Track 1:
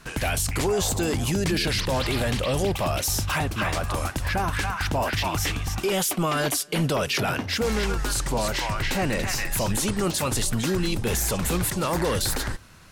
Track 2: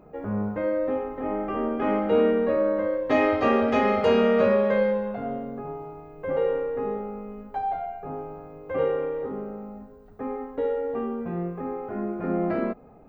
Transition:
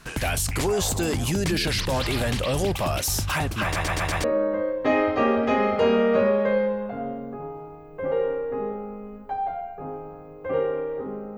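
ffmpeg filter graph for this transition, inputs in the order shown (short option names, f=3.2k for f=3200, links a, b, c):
-filter_complex "[0:a]apad=whole_dur=11.37,atrim=end=11.37,asplit=5[a][b][c][d][e];[a]atrim=end=3.762[f];[b]atrim=start=3.638:end=3.762[g];[c]atrim=start=3.638:end=3.762[h];[d]atrim=start=3.638:end=3.762[i];[e]atrim=start=3.638:end=3.762[j];[1:a]atrim=start=2.488:end=9.62[k];[f][g]acrossfade=d=0.004:c1=hsin:c2=hsin[l];[l][h]acrossfade=d=0.004:c1=hsin:c2=hsin[m];[m][i]acrossfade=d=0.004:c1=hsin:c2=hsin[n];[n][j]acrossfade=d=0.004:c1=hsin:c2=hsin[o];[o][k]acrossfade=d=0.004:c1=hsin:c2=hsin"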